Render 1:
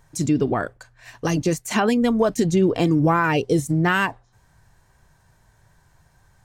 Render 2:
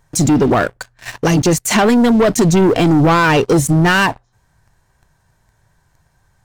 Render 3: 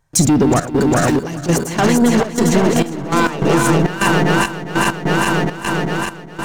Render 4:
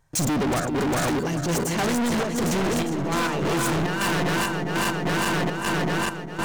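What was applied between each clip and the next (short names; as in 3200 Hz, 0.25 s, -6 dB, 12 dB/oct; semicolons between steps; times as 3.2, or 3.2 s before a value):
sample leveller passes 3; in parallel at +2 dB: limiter -18.5 dBFS, peak gain reduction 11.5 dB; on the sum: gain -2 dB
regenerating reverse delay 0.202 s, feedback 84%, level -4 dB; compressor, threshold -15 dBFS, peak gain reduction 10.5 dB; step gate ".xxx.xxx..x" 101 bpm -12 dB; gain +4.5 dB
overloaded stage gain 22 dB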